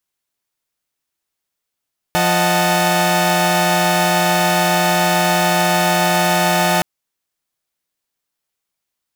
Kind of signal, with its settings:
held notes F3/D#5/F#5/A5 saw, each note −16.5 dBFS 4.67 s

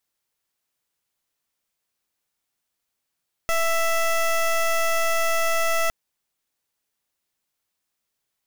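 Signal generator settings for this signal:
pulse wave 662 Hz, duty 16% −21 dBFS 2.41 s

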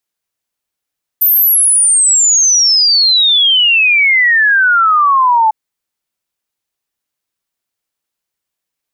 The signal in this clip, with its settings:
exponential sine sweep 14,000 Hz → 860 Hz 4.30 s −6.5 dBFS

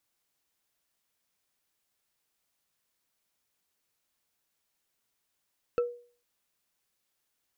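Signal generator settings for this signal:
struck wood bar, lowest mode 482 Hz, decay 0.43 s, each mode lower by 10 dB, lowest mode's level −21 dB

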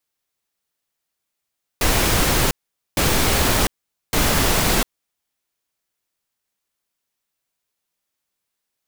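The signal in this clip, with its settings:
noise bursts pink, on 0.70 s, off 0.46 s, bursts 3, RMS −17.5 dBFS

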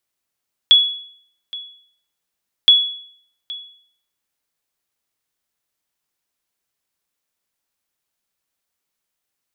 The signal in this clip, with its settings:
ping with an echo 3,380 Hz, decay 0.60 s, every 1.97 s, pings 2, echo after 0.82 s, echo −20 dB −3.5 dBFS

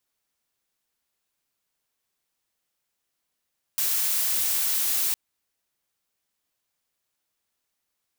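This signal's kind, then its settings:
noise blue, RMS −24.5 dBFS 1.36 s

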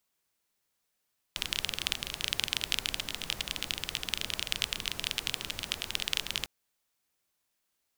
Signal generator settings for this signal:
rain-like ticks over hiss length 5.10 s, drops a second 22, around 3,100 Hz, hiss −8.5 dB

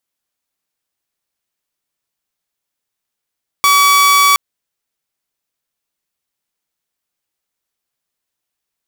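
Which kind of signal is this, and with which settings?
tone saw 1,140 Hz −5 dBFS 0.72 s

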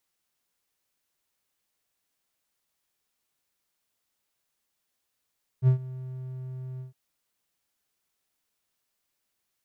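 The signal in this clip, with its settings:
note with an ADSR envelope triangle 129 Hz, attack 56 ms, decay 102 ms, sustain −20 dB, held 1.18 s, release 129 ms −12.5 dBFS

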